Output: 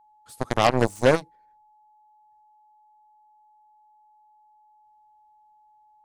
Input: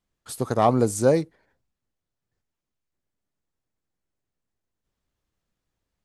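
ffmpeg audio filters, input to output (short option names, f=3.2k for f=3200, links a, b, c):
-af "aeval=exprs='0.501*(cos(1*acos(clip(val(0)/0.501,-1,1)))-cos(1*PI/2))+0.0631*(cos(5*acos(clip(val(0)/0.501,-1,1)))-cos(5*PI/2))+0.141*(cos(7*acos(clip(val(0)/0.501,-1,1)))-cos(7*PI/2))':c=same,aeval=exprs='val(0)+0.00158*sin(2*PI*850*n/s)':c=same"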